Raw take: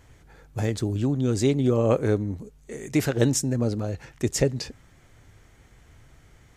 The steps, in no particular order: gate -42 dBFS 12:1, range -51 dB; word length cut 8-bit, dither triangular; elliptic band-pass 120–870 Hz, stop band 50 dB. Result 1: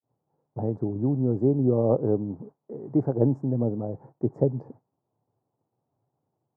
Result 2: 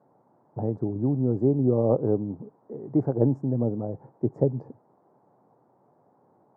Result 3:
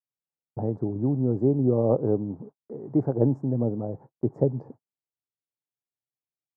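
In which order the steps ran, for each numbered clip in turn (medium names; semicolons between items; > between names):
word length cut > gate > elliptic band-pass; gate > word length cut > elliptic band-pass; word length cut > elliptic band-pass > gate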